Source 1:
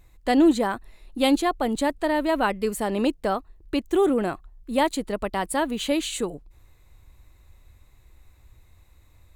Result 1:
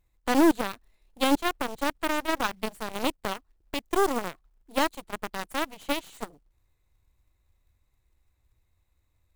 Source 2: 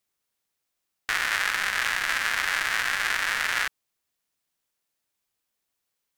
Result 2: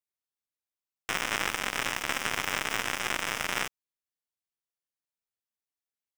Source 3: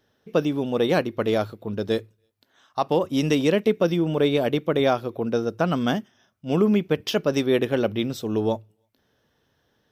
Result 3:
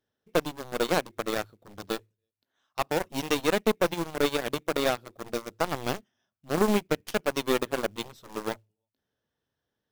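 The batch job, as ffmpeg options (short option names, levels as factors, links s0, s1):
-af "acrusher=bits=5:mode=log:mix=0:aa=0.000001,aeval=exprs='0.422*(cos(1*acos(clip(val(0)/0.422,-1,1)))-cos(1*PI/2))+0.0531*(cos(4*acos(clip(val(0)/0.422,-1,1)))-cos(4*PI/2))+0.075*(cos(7*acos(clip(val(0)/0.422,-1,1)))-cos(7*PI/2))':c=same,volume=0.631"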